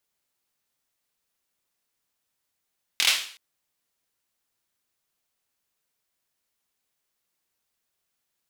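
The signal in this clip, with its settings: hand clap length 0.37 s, bursts 4, apart 24 ms, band 3100 Hz, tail 0.49 s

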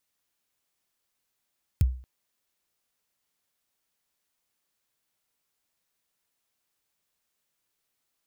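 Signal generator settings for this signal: kick drum length 0.23 s, from 130 Hz, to 63 Hz, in 25 ms, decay 0.41 s, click on, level -14 dB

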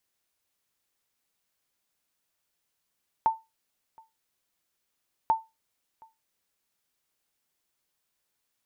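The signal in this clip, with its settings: sonar ping 893 Hz, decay 0.22 s, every 2.04 s, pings 2, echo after 0.72 s, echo -28.5 dB -15 dBFS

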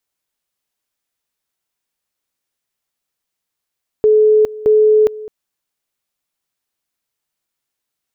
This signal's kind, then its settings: two-level tone 429 Hz -7 dBFS, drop 19 dB, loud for 0.41 s, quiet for 0.21 s, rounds 2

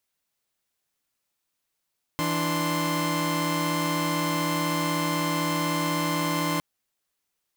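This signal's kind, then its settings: chord E3/D4/C6 saw, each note -26 dBFS 4.41 s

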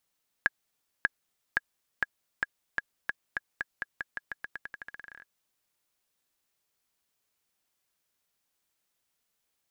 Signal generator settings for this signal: bouncing ball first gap 0.59 s, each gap 0.88, 1660 Hz, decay 28 ms -9.5 dBFS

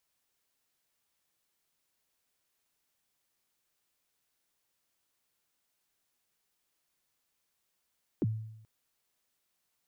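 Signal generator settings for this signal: kick drum length 0.43 s, from 410 Hz, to 110 Hz, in 33 ms, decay 0.83 s, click off, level -24 dB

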